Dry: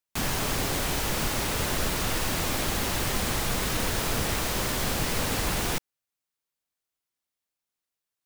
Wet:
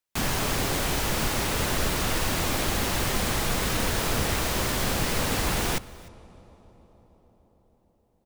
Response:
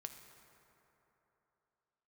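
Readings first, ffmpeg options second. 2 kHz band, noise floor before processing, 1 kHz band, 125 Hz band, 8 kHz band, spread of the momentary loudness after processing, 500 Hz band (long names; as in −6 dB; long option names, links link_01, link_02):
+1.5 dB, below −85 dBFS, +2.0 dB, +2.0 dB, +0.5 dB, 1 LU, +2.0 dB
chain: -filter_complex "[0:a]aecho=1:1:300:0.0708,asplit=2[link_01][link_02];[1:a]atrim=start_sample=2205,asetrate=23373,aresample=44100,highshelf=frequency=6200:gain=-11[link_03];[link_02][link_03]afir=irnorm=-1:irlink=0,volume=-10dB[link_04];[link_01][link_04]amix=inputs=2:normalize=0"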